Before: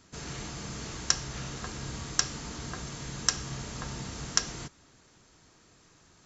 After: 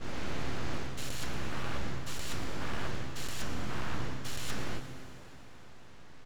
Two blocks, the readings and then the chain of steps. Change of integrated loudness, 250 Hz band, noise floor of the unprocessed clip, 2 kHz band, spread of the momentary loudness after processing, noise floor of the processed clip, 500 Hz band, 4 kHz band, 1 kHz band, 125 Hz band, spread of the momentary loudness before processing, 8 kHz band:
−6.0 dB, +0.5 dB, −61 dBFS, −1.0 dB, 16 LU, −47 dBFS, +2.0 dB, −8.0 dB, 0.0 dB, −0.5 dB, 10 LU, can't be measured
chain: every bin's largest magnitude spread in time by 240 ms
reversed playback
downward compressor 4 to 1, threshold −30 dBFS, peak gain reduction 13.5 dB
reversed playback
low-pass filter 2,800 Hz 12 dB per octave
full-wave rectification
on a send: echo with shifted repeats 115 ms, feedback 46%, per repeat +130 Hz, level −16 dB
on the sum: speech leveller 0.5 s
low-shelf EQ 100 Hz +7.5 dB
dense smooth reverb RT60 4.3 s, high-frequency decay 0.85×, DRR 8.5 dB

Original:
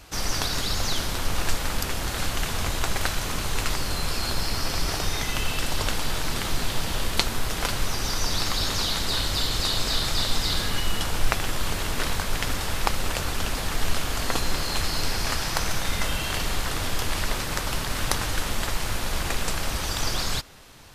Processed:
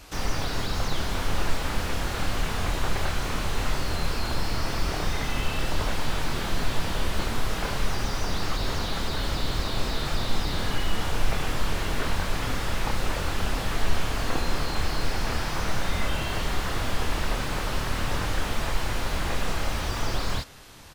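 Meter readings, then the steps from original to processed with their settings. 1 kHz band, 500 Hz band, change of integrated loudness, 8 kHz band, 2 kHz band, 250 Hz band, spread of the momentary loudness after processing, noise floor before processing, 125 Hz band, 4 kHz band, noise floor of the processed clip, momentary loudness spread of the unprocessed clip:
−0.5 dB, +0.5 dB, −2.5 dB, −7.5 dB, −1.5 dB, +1.0 dB, 1 LU, −30 dBFS, +0.5 dB, −5.5 dB, −30 dBFS, 4 LU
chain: double-tracking delay 27 ms −6.5 dB
slew-rate limiting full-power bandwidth 72 Hz

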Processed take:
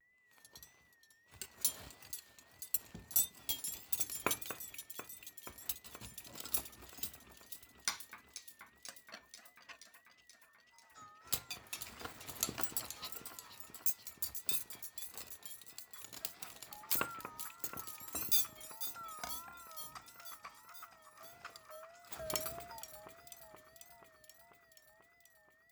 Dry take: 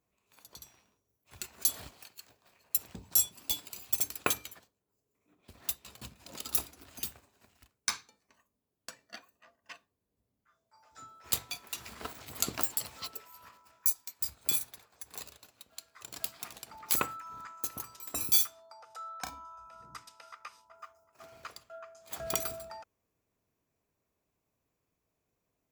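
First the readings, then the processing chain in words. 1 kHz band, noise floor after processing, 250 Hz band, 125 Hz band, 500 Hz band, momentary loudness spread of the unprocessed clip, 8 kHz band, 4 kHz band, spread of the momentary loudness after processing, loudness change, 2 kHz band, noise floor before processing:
−5.0 dB, −69 dBFS, −4.5 dB, −4.5 dB, −4.5 dB, 21 LU, −5.0 dB, −5.0 dB, 20 LU, −7.0 dB, −4.5 dB, −83 dBFS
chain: steady tone 1,900 Hz −64 dBFS
delay that swaps between a low-pass and a high-pass 242 ms, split 2,500 Hz, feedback 83%, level −10 dB
pitch vibrato 1.6 Hz 98 cents
level −5.5 dB

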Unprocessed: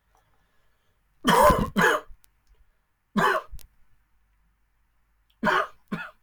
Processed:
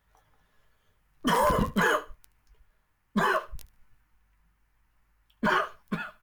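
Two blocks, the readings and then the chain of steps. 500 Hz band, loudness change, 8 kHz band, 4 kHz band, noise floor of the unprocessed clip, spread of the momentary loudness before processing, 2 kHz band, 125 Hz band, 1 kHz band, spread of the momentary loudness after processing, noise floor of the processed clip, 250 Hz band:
−4.5 dB, −4.5 dB, −5.0 dB, −4.0 dB, −71 dBFS, 13 LU, −3.5 dB, −3.0 dB, −4.5 dB, 11 LU, −72 dBFS, −2.0 dB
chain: brickwall limiter −15 dBFS, peak gain reduction 8 dB
on a send: repeating echo 74 ms, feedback 21%, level −20 dB

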